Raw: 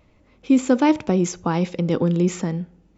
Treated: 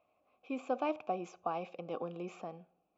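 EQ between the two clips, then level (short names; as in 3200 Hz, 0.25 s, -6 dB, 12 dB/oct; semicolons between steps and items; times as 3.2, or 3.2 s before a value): vowel filter a; -1.5 dB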